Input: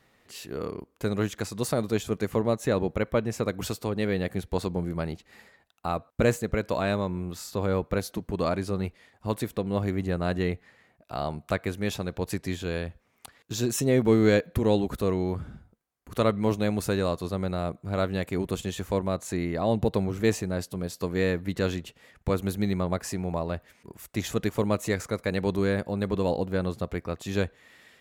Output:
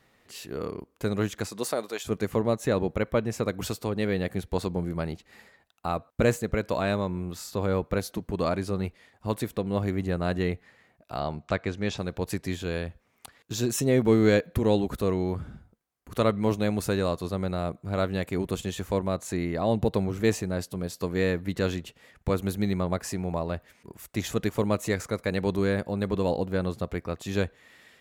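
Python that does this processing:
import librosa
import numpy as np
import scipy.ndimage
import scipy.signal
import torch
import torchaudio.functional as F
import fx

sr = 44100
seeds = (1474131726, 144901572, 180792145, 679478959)

y = fx.highpass(x, sr, hz=fx.line((1.46, 180.0), (2.04, 750.0)), slope=12, at=(1.46, 2.04), fade=0.02)
y = fx.lowpass(y, sr, hz=6800.0, slope=24, at=(11.19, 11.98))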